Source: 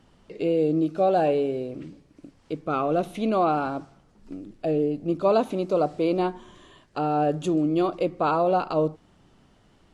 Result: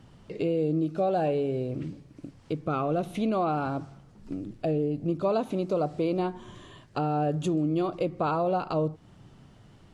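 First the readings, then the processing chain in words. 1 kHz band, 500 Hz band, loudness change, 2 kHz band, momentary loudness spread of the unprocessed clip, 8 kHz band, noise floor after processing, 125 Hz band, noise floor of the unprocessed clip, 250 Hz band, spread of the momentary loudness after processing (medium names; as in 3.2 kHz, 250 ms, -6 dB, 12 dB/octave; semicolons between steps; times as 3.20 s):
-5.0 dB, -4.5 dB, -4.0 dB, -4.5 dB, 14 LU, no reading, -55 dBFS, +2.0 dB, -60 dBFS, -3.0 dB, 13 LU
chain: peaking EQ 120 Hz +10 dB 1 oct; compression 2:1, threshold -30 dBFS, peak gain reduction 8 dB; trim +1.5 dB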